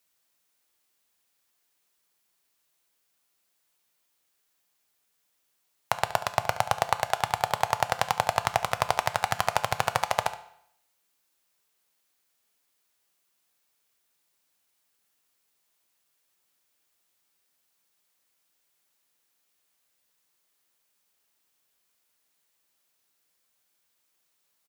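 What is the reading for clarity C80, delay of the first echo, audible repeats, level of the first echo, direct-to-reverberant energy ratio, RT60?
17.5 dB, 71 ms, 1, -15.0 dB, 9.5 dB, 0.70 s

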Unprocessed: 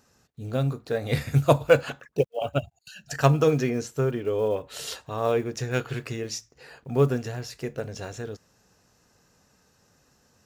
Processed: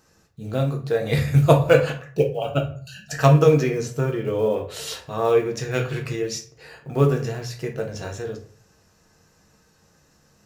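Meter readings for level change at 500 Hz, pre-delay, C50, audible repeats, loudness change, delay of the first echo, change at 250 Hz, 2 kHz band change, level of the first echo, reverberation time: +4.0 dB, 5 ms, 10.5 dB, no echo, +4.5 dB, no echo, +4.5 dB, +3.0 dB, no echo, 0.45 s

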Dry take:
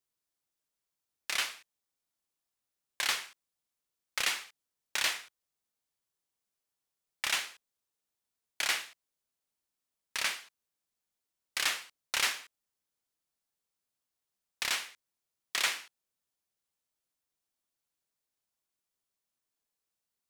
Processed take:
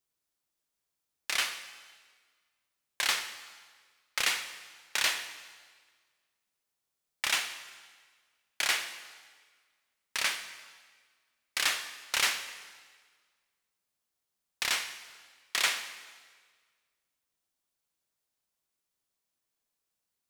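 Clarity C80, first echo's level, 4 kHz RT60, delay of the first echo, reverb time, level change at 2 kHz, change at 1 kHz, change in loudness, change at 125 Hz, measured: 12.0 dB, no echo, 1.5 s, no echo, 1.6 s, +2.5 dB, +2.5 dB, +2.0 dB, no reading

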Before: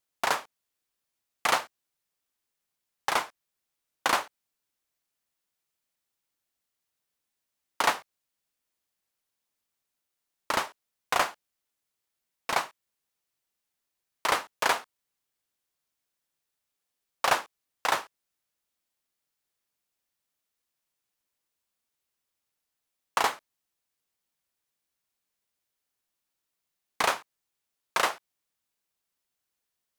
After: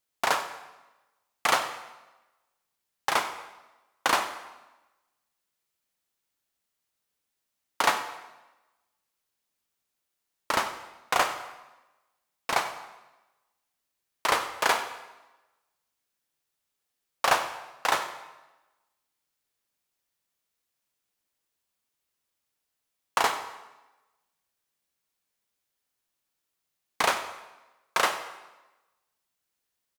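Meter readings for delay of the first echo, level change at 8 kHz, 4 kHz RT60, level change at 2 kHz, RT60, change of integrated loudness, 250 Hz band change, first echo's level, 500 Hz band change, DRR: 94 ms, +1.5 dB, 0.95 s, +1.5 dB, 1.1 s, +1.0 dB, +1.5 dB, -17.5 dB, +1.5 dB, 7.5 dB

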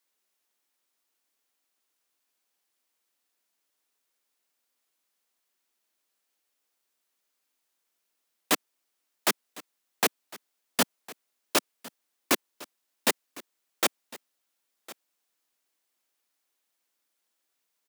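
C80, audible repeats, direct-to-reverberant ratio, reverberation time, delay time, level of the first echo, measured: no reverb, 1, no reverb, no reverb, 1056 ms, -20.0 dB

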